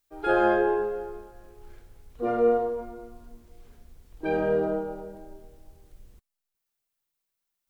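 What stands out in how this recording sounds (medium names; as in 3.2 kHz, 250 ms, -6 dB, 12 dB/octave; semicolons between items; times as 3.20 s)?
noise floor -84 dBFS; spectral tilt -1.5 dB/octave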